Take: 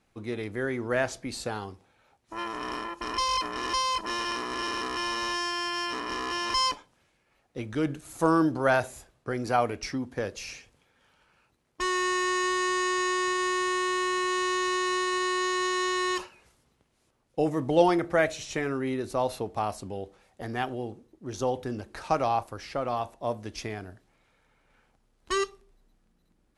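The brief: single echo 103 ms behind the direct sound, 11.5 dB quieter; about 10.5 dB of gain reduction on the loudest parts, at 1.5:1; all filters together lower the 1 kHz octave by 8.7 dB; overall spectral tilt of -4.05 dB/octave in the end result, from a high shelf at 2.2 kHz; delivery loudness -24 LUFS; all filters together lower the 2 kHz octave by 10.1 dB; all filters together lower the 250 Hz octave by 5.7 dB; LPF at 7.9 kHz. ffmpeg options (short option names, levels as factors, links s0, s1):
-af "lowpass=7900,equalizer=f=250:t=o:g=-8,equalizer=f=1000:t=o:g=-7.5,equalizer=f=2000:t=o:g=-8,highshelf=f=2200:g=-3.5,acompressor=threshold=0.00316:ratio=1.5,aecho=1:1:103:0.266,volume=7.94"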